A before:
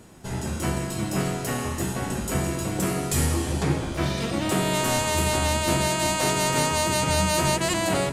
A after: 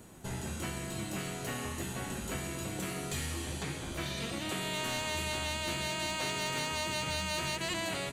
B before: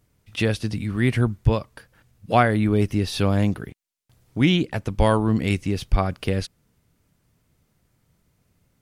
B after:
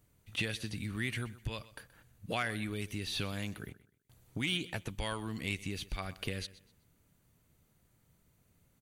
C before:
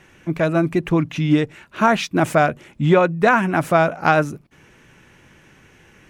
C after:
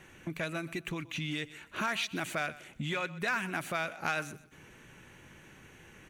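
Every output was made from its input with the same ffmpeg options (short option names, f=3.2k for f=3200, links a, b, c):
-filter_complex "[0:a]acrossover=split=5200[a][b];[b]acompressor=threshold=-44dB:ratio=4:attack=1:release=60[c];[a][c]amix=inputs=2:normalize=0,bandreject=f=5.2k:w=7.3,acrossover=split=1800[d][e];[d]acompressor=threshold=-31dB:ratio=10[f];[e]asoftclip=type=tanh:threshold=-21dB[g];[f][g]amix=inputs=2:normalize=0,crystalizer=i=0.5:c=0,aecho=1:1:126|252|378:0.126|0.0365|0.0106,volume=-4.5dB"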